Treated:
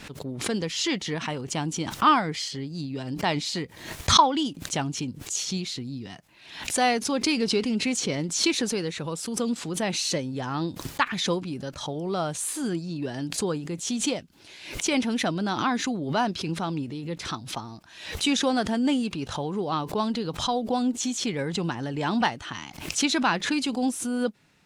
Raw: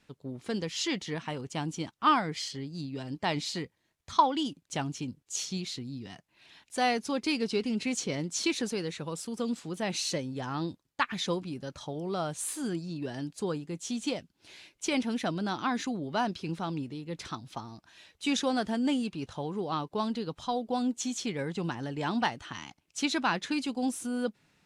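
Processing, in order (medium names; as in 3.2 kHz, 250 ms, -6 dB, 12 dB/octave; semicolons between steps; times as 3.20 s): swell ahead of each attack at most 78 dB/s; trim +4.5 dB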